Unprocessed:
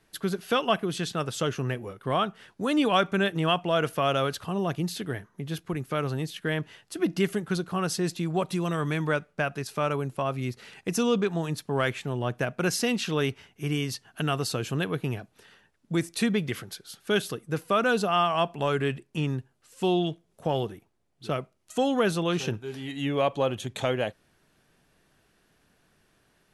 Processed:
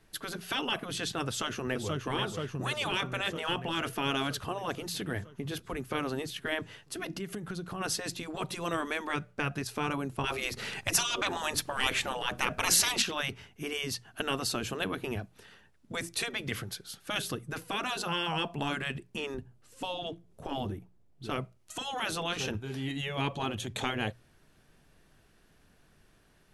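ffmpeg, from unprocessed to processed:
-filter_complex "[0:a]asplit=2[s0][s1];[s1]afade=t=in:st=1.26:d=0.01,afade=t=out:st=2.07:d=0.01,aecho=0:1:480|960|1440|1920|2400|2880|3360|3840|4320|4800|5280:0.446684|0.312679|0.218875|0.153212|0.107249|0.0750741|0.0525519|0.0367863|0.0257504|0.0180253|0.0126177[s2];[s0][s2]amix=inputs=2:normalize=0,asplit=3[s3][s4][s5];[s3]afade=t=out:st=7.14:d=0.02[s6];[s4]acompressor=threshold=0.02:ratio=10:attack=3.2:release=140:knee=1:detection=peak,afade=t=in:st=7.14:d=0.02,afade=t=out:st=7.8:d=0.02[s7];[s5]afade=t=in:st=7.8:d=0.02[s8];[s6][s7][s8]amix=inputs=3:normalize=0,asettb=1/sr,asplit=3[s9][s10][s11];[s9]atrim=end=19.344[s12];[s10]atrim=start=19.34:end=21.28,asetpts=PTS-STARTPTS,afade=t=in:d=0.004:c=qsin,afade=t=out:st=1.936:d=0.004:c=qsin,tiltshelf=f=690:g=4[s13];[s11]atrim=start=21.276[s14];[s12][s13]acrossfade=d=0.004:c1=hsin:c2=qsin[s15];[s15][s14]acrossfade=d=0.004:c1=qsin:c2=hsin,asplit=3[s16][s17][s18];[s16]atrim=end=10.242[s19];[s17]atrim=start=10.238:end=13.022,asetpts=PTS-STARTPTS,volume=2.99[s20];[s18]atrim=start=13.018[s21];[s19][s20]acrossfade=d=0.004:c1=hsin:c2=hsin[s22];[s22][s21]acrossfade=d=0.004:c1=hsin:c2=hsin,afftfilt=real='re*lt(hypot(re,im),0.2)':imag='im*lt(hypot(re,im),0.2)':win_size=1024:overlap=0.75,lowshelf=f=110:g=9.5,bandreject=f=60:t=h:w=6,bandreject=f=120:t=h:w=6,bandreject=f=180:t=h:w=6"

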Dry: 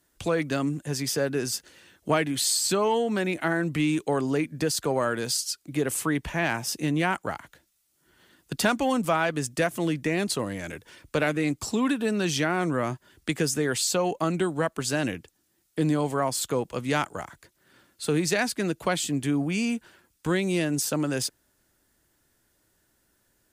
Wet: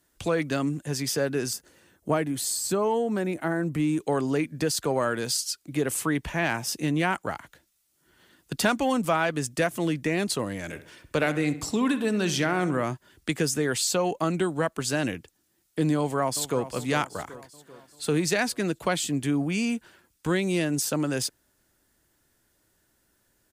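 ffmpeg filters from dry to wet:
-filter_complex "[0:a]asettb=1/sr,asplit=3[s0][s1][s2];[s0]atrim=end=1.534[s3];[s1]atrim=start=1.53:end=4.01,asetpts=PTS-STARTPTS,afade=t=in:d=0.004:c=qsin,afade=t=out:st=2.476:d=0.004:c=qsin,equalizer=f=3200:t=o:w=2.1:g=-9.5[s4];[s2]atrim=start=4.006[s5];[s3][s4]acrossfade=d=0.004:c1=hsin:c2=qsin[s6];[s6][s5]acrossfade=d=0.004:c1=qsin:c2=hsin,asettb=1/sr,asplit=3[s7][s8][s9];[s7]atrim=end=10.624[s10];[s8]atrim=start=10.62:end=12.83,asetpts=PTS-STARTPTS,afade=t=in:d=0.004:c=qsin,afade=t=out:st=2.206:d=0.004:c=qsin,asplit=2[s11][s12];[s12]adelay=66,lowpass=f=3600:p=1,volume=0.224,asplit=2[s13][s14];[s14]adelay=66,lowpass=f=3600:p=1,volume=0.51,asplit=2[s15][s16];[s16]adelay=66,lowpass=f=3600:p=1,volume=0.51,asplit=2[s17][s18];[s18]adelay=66,lowpass=f=3600:p=1,volume=0.51,asplit=2[s19][s20];[s20]adelay=66,lowpass=f=3600:p=1,volume=0.51[s21];[s11][s13][s15][s17][s19][s21]amix=inputs=6:normalize=0,atrim=end_sample=97461[s22];[s9]atrim=start=12.826[s23];[s10][s22]acrossfade=d=0.004:c1=hsin:c2=qsin[s24];[s24][s23]acrossfade=d=0.004:c1=qsin:c2=hsin,asplit=2[s25][s26];[s26]afade=t=in:st=15.97:d=0.01,afade=t=out:st=16.67:d=0.01,aecho=0:1:390|780|1170|1560|1950|2340:0.223872|0.12313|0.0677213|0.0372467|0.0204857|0.0112671[s27];[s25][s27]amix=inputs=2:normalize=0"

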